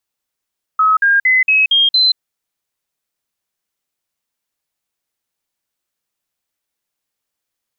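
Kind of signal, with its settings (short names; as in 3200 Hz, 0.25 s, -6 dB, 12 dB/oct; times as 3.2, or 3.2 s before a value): stepped sine 1280 Hz up, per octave 3, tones 6, 0.18 s, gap 0.05 s -8.5 dBFS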